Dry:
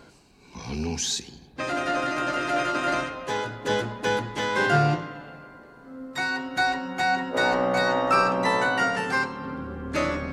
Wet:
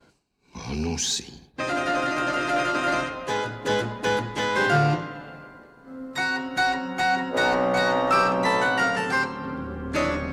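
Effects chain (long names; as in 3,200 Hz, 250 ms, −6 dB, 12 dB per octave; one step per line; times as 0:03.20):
downward expander −44 dBFS
in parallel at −5 dB: hard clipping −22 dBFS, distortion −10 dB
on the sum: level −2 dB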